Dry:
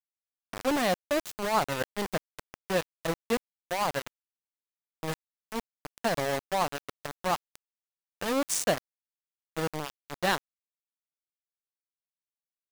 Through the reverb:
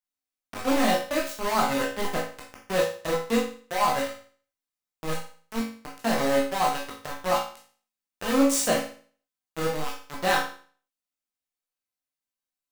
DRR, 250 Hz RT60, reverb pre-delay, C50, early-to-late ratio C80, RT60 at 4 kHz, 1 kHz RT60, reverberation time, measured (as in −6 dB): −4.0 dB, 0.45 s, 14 ms, 5.0 dB, 9.5 dB, 0.45 s, 0.45 s, 0.45 s